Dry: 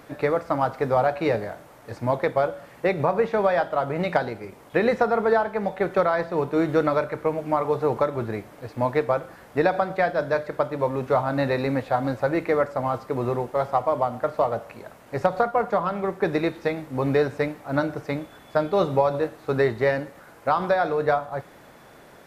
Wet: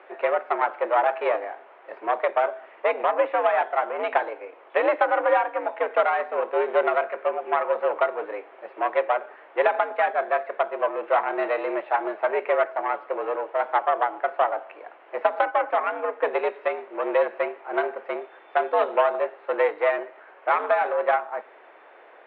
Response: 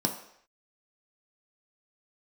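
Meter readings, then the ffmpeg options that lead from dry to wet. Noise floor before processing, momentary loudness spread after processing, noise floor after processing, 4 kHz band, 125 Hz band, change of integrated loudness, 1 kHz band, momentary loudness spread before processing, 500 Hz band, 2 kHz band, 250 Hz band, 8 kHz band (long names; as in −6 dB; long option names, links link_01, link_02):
−49 dBFS, 10 LU, −50 dBFS, −2.5 dB, below −40 dB, −0.5 dB, +2.0 dB, 9 LU, −1.0 dB, +2.0 dB, −11.5 dB, can't be measured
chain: -af "aeval=exprs='0.473*(cos(1*acos(clip(val(0)/0.473,-1,1)))-cos(1*PI/2))+0.0596*(cos(6*acos(clip(val(0)/0.473,-1,1)))-cos(6*PI/2))':channel_layout=same,highpass=frequency=290:width_type=q:width=0.5412,highpass=frequency=290:width_type=q:width=1.307,lowpass=frequency=2900:width_type=q:width=0.5176,lowpass=frequency=2900:width_type=q:width=0.7071,lowpass=frequency=2900:width_type=q:width=1.932,afreqshift=86"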